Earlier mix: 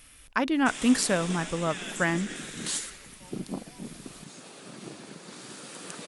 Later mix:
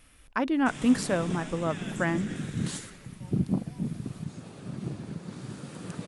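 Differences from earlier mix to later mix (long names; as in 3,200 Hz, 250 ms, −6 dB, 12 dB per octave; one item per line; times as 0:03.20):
background: remove high-pass filter 330 Hz 12 dB per octave
master: add high-shelf EQ 2,000 Hz −9 dB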